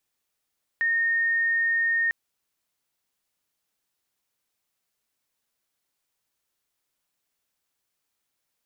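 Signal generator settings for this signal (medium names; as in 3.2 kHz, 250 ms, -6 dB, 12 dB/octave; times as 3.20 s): tone sine 1.84 kHz -20.5 dBFS 1.30 s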